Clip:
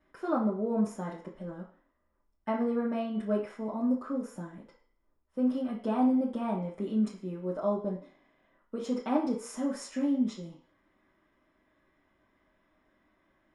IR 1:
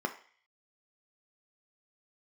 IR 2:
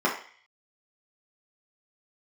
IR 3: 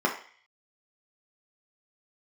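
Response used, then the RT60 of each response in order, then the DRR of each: 2; 0.45, 0.45, 0.45 seconds; 5.0, −5.0, −1.0 decibels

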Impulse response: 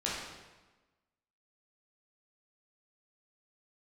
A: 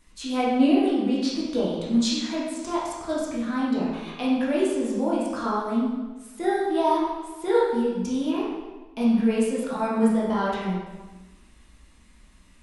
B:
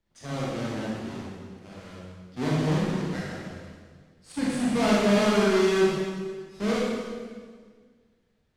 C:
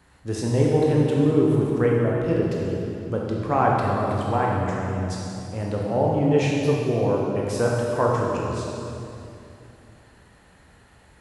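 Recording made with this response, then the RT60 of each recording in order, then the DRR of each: A; 1.2, 1.7, 2.8 seconds; −7.0, −6.5, −3.5 decibels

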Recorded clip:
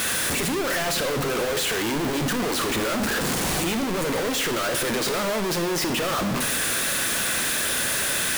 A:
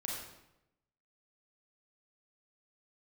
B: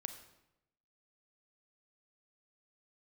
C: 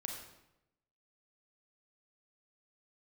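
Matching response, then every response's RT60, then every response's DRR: B; 0.90, 0.90, 0.90 seconds; −3.5, 7.5, 1.0 decibels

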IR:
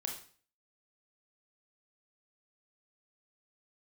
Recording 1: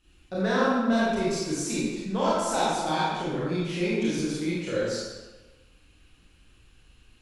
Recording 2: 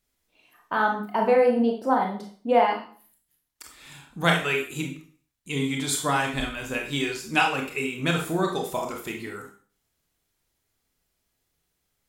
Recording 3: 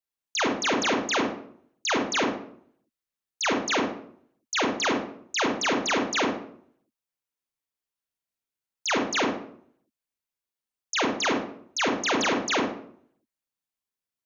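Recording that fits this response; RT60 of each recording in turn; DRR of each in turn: 2; 1.2, 0.45, 0.60 seconds; −8.5, 1.0, 0.0 decibels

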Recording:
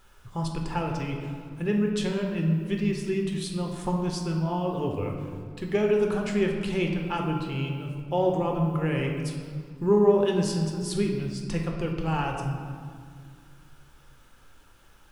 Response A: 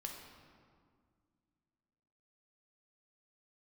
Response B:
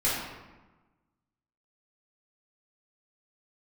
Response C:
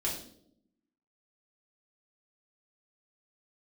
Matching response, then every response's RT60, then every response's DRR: A; 2.0, 1.2, 0.65 seconds; 1.0, −10.0, −5.5 decibels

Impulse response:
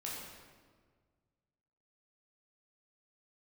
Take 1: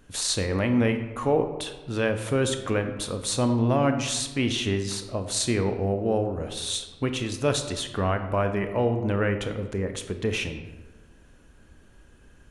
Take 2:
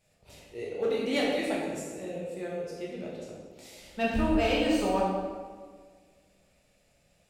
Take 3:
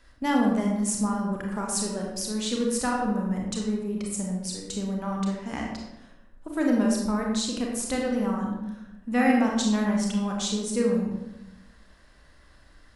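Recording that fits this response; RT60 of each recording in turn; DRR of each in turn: 2; 1.3, 1.6, 0.95 seconds; 7.5, −5.0, −1.0 decibels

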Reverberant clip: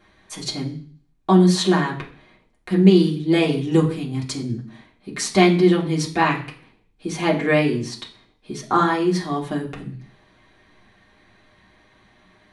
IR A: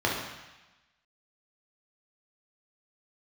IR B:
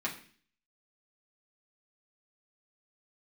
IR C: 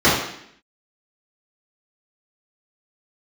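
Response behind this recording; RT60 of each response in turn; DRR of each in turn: B; 1.1, 0.45, 0.70 seconds; −3.0, −4.5, −11.0 decibels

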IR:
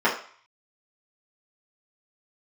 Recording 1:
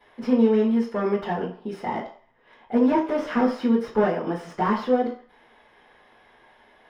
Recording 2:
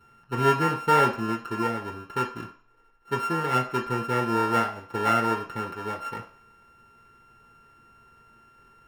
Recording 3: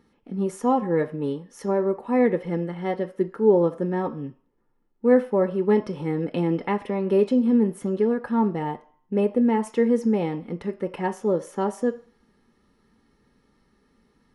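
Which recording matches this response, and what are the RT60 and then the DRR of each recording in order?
1; 0.50, 0.50, 0.50 seconds; −9.0, −2.0, 7.5 decibels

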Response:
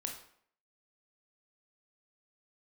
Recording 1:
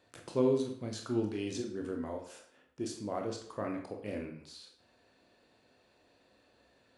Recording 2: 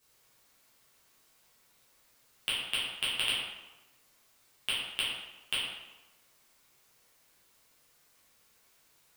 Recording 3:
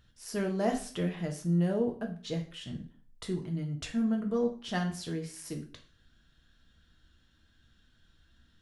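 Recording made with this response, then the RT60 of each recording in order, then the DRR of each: 1; 0.60, 1.0, 0.45 seconds; 2.5, −10.0, 2.0 decibels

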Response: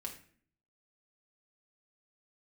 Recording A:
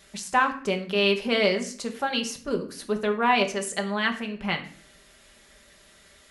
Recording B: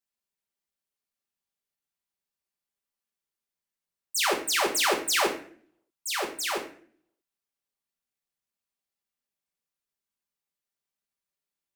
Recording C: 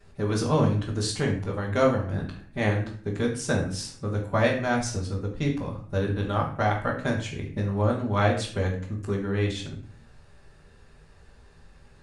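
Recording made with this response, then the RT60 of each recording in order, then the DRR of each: B; 0.50, 0.50, 0.50 seconds; 3.0, −1.0, −10.0 decibels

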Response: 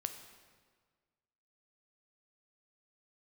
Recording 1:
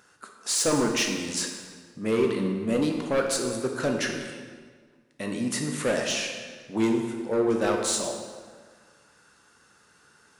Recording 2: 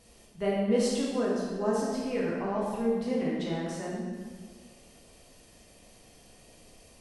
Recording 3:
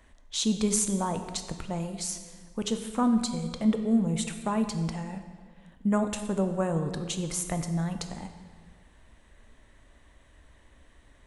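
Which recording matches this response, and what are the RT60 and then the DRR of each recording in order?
3; 1.6, 1.6, 1.6 seconds; 2.0, −5.5, 7.0 decibels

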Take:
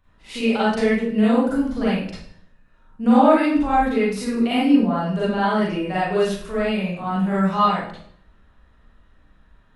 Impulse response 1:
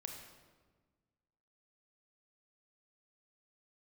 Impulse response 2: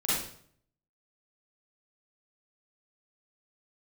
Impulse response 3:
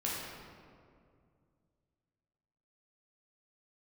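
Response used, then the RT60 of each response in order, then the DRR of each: 2; 1.4, 0.60, 2.2 seconds; 2.5, −10.0, −6.0 decibels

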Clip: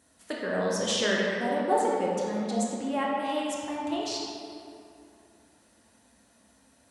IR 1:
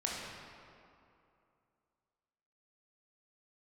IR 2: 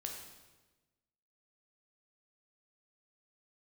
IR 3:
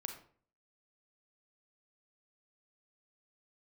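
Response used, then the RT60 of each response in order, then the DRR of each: 1; 2.6, 1.2, 0.50 seconds; −4.0, 1.0, 4.0 decibels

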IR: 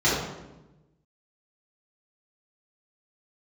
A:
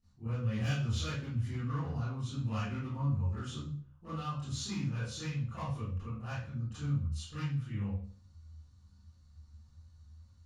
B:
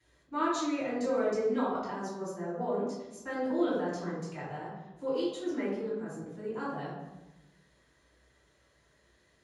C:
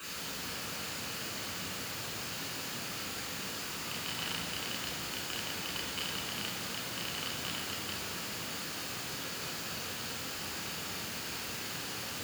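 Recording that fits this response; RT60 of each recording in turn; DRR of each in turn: B; 0.45, 1.0, 2.2 seconds; −15.0, −10.5, −5.5 decibels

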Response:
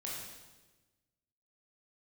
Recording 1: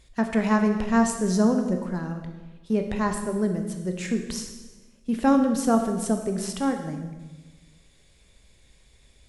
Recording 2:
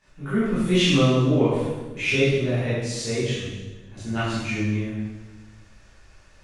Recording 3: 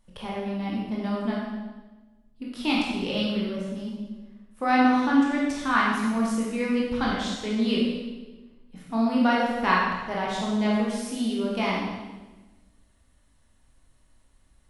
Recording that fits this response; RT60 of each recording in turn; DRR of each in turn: 3; 1.2, 1.2, 1.2 seconds; 4.5, −14.0, −5.0 decibels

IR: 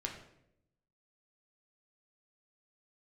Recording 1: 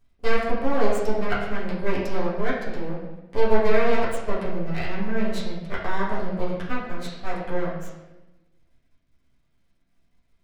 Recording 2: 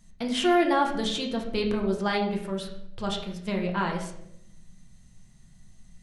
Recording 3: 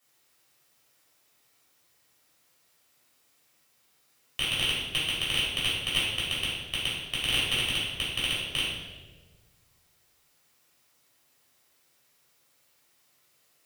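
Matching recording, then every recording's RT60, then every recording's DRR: 2; 1.1, 0.80, 1.4 seconds; −8.5, 0.5, −9.5 decibels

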